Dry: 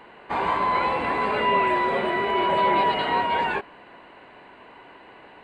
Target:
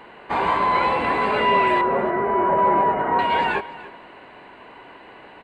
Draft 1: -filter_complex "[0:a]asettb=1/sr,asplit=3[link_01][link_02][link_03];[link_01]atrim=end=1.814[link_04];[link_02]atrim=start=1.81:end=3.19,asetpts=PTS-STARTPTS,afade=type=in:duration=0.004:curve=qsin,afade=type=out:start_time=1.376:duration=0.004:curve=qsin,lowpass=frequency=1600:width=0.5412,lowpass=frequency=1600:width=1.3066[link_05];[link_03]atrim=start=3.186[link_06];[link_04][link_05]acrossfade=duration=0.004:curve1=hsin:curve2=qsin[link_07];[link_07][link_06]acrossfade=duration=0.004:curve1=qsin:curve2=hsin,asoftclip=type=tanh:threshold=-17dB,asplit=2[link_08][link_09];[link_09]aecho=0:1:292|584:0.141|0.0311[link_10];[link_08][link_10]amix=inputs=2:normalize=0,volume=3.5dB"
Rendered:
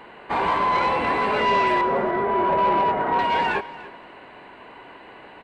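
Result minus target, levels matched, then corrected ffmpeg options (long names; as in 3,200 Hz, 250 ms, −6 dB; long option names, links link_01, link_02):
soft clipping: distortion +15 dB
-filter_complex "[0:a]asettb=1/sr,asplit=3[link_01][link_02][link_03];[link_01]atrim=end=1.814[link_04];[link_02]atrim=start=1.81:end=3.19,asetpts=PTS-STARTPTS,afade=type=in:duration=0.004:curve=qsin,afade=type=out:start_time=1.376:duration=0.004:curve=qsin,lowpass=frequency=1600:width=0.5412,lowpass=frequency=1600:width=1.3066[link_05];[link_03]atrim=start=3.186[link_06];[link_04][link_05]acrossfade=duration=0.004:curve1=hsin:curve2=qsin[link_07];[link_07][link_06]acrossfade=duration=0.004:curve1=qsin:curve2=hsin,asoftclip=type=tanh:threshold=-8dB,asplit=2[link_08][link_09];[link_09]aecho=0:1:292|584:0.141|0.0311[link_10];[link_08][link_10]amix=inputs=2:normalize=0,volume=3.5dB"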